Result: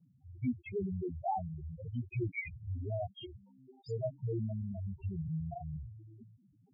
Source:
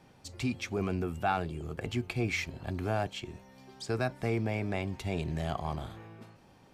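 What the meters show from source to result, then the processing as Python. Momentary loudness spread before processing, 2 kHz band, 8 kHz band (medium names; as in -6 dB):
14 LU, -10.0 dB, under -25 dB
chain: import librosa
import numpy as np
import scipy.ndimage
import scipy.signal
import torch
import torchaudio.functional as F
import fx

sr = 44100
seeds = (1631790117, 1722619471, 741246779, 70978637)

y = fx.mod_noise(x, sr, seeds[0], snr_db=34)
y = fx.spec_topn(y, sr, count=2)
y = fx.dispersion(y, sr, late='highs', ms=46.0, hz=1100.0)
y = y * librosa.db_to_amplitude(1.0)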